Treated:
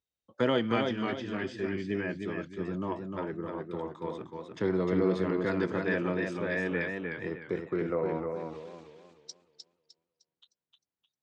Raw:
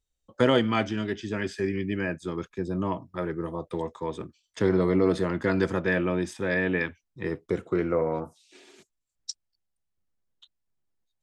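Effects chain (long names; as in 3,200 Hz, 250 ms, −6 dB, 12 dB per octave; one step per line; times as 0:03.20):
band-pass filter 110–5,000 Hz
feedback echo with a swinging delay time 307 ms, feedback 35%, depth 80 cents, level −4.5 dB
level −5.5 dB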